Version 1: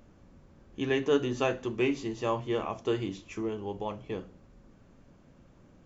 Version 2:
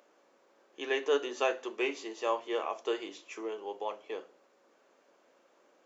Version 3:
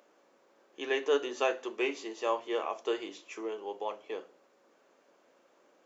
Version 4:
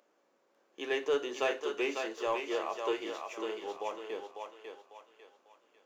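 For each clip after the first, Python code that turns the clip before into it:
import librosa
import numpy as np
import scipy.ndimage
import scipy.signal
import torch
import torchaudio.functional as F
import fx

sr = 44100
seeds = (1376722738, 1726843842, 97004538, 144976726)

y1 = scipy.signal.sosfilt(scipy.signal.butter(4, 410.0, 'highpass', fs=sr, output='sos'), x)
y2 = fx.low_shelf(y1, sr, hz=140.0, db=7.0)
y3 = fx.leveller(y2, sr, passes=1)
y3 = fx.echo_thinned(y3, sr, ms=548, feedback_pct=40, hz=490.0, wet_db=-4)
y3 = y3 * 10.0 ** (-5.0 / 20.0)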